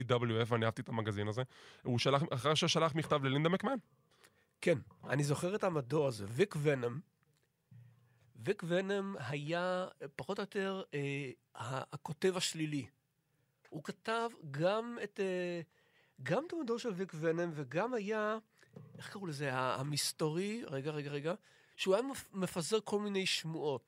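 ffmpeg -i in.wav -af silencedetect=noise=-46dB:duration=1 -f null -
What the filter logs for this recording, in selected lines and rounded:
silence_start: 7.00
silence_end: 8.40 | silence_duration: 1.40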